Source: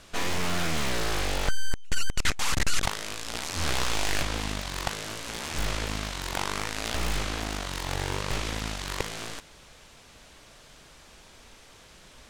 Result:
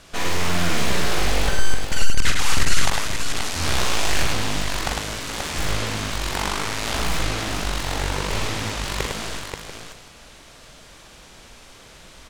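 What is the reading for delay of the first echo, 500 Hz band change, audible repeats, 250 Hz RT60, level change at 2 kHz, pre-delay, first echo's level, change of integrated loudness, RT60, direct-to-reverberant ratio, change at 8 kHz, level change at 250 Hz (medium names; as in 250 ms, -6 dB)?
46 ms, +6.0 dB, 4, no reverb, +6.0 dB, no reverb, -5.0 dB, +6.0 dB, no reverb, no reverb, +6.0 dB, +6.0 dB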